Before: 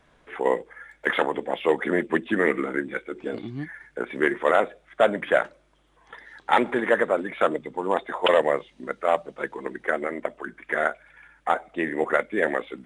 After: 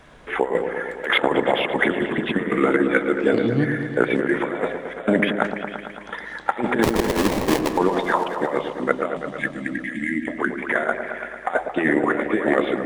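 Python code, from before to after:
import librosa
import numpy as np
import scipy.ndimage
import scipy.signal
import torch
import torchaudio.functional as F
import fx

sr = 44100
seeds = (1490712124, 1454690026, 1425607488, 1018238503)

y = fx.sample_hold(x, sr, seeds[0], rate_hz=1400.0, jitter_pct=20, at=(6.82, 7.76), fade=0.02)
y = fx.over_compress(y, sr, threshold_db=-27.0, ratio=-0.5)
y = fx.spec_erase(y, sr, start_s=9.17, length_s=1.11, low_hz=340.0, high_hz=1600.0)
y = fx.echo_opening(y, sr, ms=112, hz=750, octaves=1, feedback_pct=70, wet_db=-6)
y = F.gain(torch.from_numpy(y), 7.0).numpy()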